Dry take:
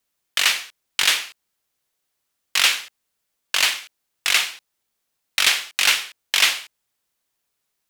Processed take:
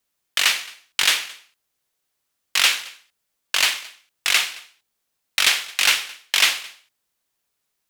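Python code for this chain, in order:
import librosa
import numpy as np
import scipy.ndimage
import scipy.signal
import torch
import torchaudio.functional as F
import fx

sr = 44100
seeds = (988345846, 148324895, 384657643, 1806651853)

y = x + 10.0 ** (-23.0 / 20.0) * np.pad(x, (int(219 * sr / 1000.0), 0))[:len(x)]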